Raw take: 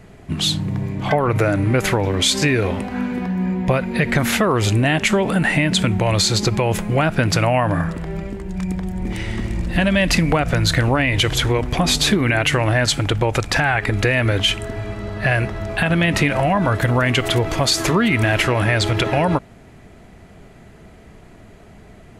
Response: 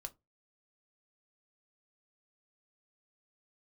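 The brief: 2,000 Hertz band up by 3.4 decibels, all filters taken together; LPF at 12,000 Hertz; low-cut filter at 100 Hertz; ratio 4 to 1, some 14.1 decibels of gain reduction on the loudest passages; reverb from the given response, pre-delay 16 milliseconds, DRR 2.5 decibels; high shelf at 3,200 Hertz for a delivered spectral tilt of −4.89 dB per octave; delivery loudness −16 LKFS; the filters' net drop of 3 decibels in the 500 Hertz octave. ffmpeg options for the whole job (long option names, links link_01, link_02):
-filter_complex "[0:a]highpass=100,lowpass=12000,equalizer=frequency=500:width_type=o:gain=-4,equalizer=frequency=2000:width_type=o:gain=6,highshelf=frequency=3200:gain=-5,acompressor=threshold=-30dB:ratio=4,asplit=2[link_01][link_02];[1:a]atrim=start_sample=2205,adelay=16[link_03];[link_02][link_03]afir=irnorm=-1:irlink=0,volume=1.5dB[link_04];[link_01][link_04]amix=inputs=2:normalize=0,volume=13dB"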